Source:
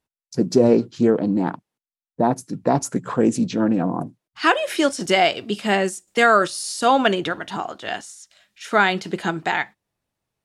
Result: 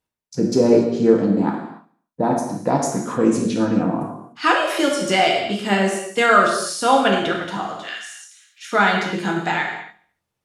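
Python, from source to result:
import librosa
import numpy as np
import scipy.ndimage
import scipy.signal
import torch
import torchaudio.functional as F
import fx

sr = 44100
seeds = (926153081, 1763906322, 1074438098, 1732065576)

y = fx.highpass(x, sr, hz=1400.0, slope=24, at=(7.82, 8.72))
y = fx.echo_feedback(y, sr, ms=72, feedback_pct=52, wet_db=-20)
y = fx.rev_gated(y, sr, seeds[0], gate_ms=320, shape='falling', drr_db=-1.0)
y = y * librosa.db_to_amplitude(-2.0)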